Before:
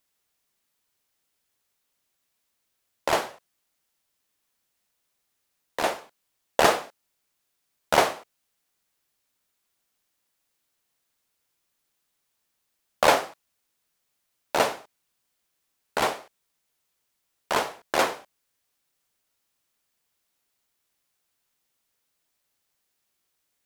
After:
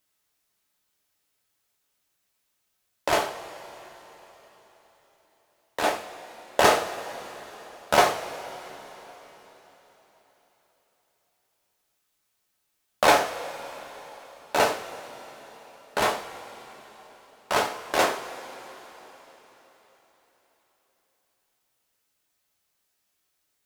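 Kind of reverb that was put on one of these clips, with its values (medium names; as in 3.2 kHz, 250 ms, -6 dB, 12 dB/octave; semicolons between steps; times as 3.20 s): two-slope reverb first 0.34 s, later 4.3 s, from -18 dB, DRR 1 dB; trim -1 dB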